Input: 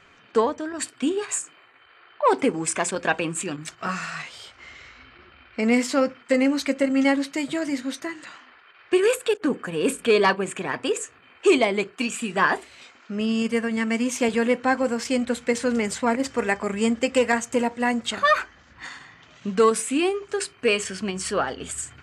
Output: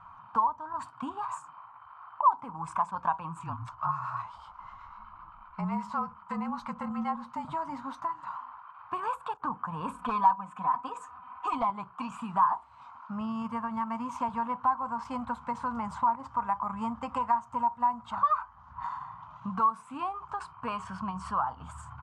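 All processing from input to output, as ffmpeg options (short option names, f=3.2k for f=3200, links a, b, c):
-filter_complex "[0:a]asettb=1/sr,asplit=3[a][b][c];[a]atrim=end=3.394[d];[b]atrim=start=3.39:end=7.45,asetpts=PTS-STARTPTS,afade=t=in:d=0.004:c=qsin,afade=t=out:st=4.056:d=0.004:c=qsin,afreqshift=-40,acrossover=split=1000[e][f];[e]aeval=exprs='val(0)*(1-0.5/2+0.5/2*cos(2*PI*8*n/s))':c=same[g];[f]aeval=exprs='val(0)*(1-0.5/2-0.5/2*cos(2*PI*8*n/s))':c=same[h];[g][h]amix=inputs=2:normalize=0[i];[c]atrim=start=7.446[j];[d][i]acrossfade=d=0.004:c1=hsin:c2=qsin[k];[k][j]acrossfade=d=0.004:c1=qsin:c2=hsin,asettb=1/sr,asplit=3[l][m][n];[l]atrim=end=9.944[o];[m]atrim=start=9.94:end=11.7,asetpts=PTS-STARTPTS,afade=t=in:d=0.004:c=qsin,afade=t=out:st=1.756:d=0.004:c=qsin,highpass=59,aecho=1:1:4:0.84,atrim=end_sample=77616,asoftclip=type=hard:threshold=-10dB[p];[n]atrim=start=11.696[q];[o][p]acrossfade=d=0.004:c1=hsin:c2=qsin[r];[r][q]acrossfade=d=0.004:c1=qsin:c2=hsin,firequalizer=gain_entry='entry(130,0);entry(390,-28);entry(960,15);entry(1800,-20);entry(2900,-20);entry(7200,-27)':delay=0.05:min_phase=1,acompressor=threshold=-36dB:ratio=2,volume=3dB"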